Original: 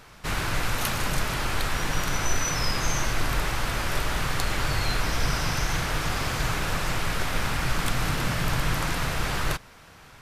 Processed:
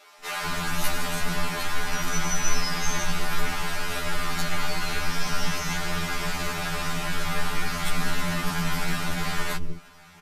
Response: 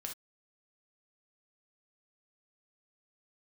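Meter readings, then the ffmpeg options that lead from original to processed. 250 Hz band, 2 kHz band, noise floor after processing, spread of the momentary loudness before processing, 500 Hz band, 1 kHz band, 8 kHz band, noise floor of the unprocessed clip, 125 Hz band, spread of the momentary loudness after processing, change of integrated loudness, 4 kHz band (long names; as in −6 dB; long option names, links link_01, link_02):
+0.5 dB, −0.5 dB, −50 dBFS, 2 LU, −1.5 dB, −1.0 dB, 0.0 dB, −50 dBFS, −4.0 dB, 3 LU, −1.0 dB, −0.5 dB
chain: -filter_complex "[0:a]aecho=1:1:4.9:0.74,acrossover=split=380[link_01][link_02];[link_01]adelay=200[link_03];[link_03][link_02]amix=inputs=2:normalize=0,afftfilt=real='re*2*eq(mod(b,4),0)':imag='im*2*eq(mod(b,4),0)':win_size=2048:overlap=0.75"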